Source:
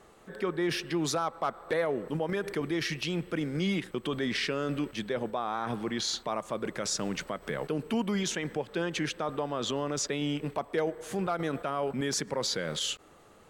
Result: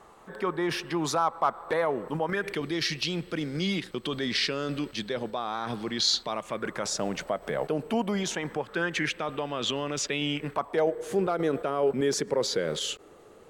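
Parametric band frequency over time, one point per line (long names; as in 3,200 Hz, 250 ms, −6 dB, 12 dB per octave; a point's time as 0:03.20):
parametric band +9.5 dB 0.85 octaves
0:02.22 970 Hz
0:02.66 4,400 Hz
0:06.27 4,400 Hz
0:06.93 670 Hz
0:08.19 670 Hz
0:09.28 2,700 Hz
0:10.31 2,700 Hz
0:10.99 420 Hz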